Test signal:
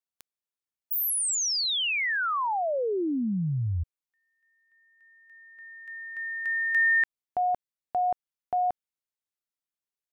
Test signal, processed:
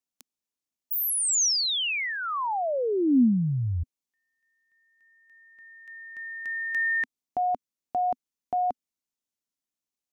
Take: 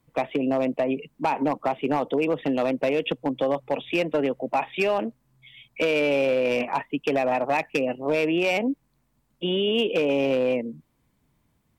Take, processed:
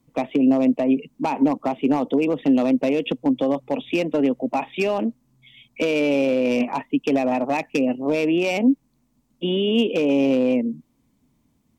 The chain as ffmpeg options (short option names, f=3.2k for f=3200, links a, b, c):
-af "equalizer=f=250:t=o:w=0.67:g=10,equalizer=f=1.6k:t=o:w=0.67:g=-5,equalizer=f=6.3k:t=o:w=0.67:g=5"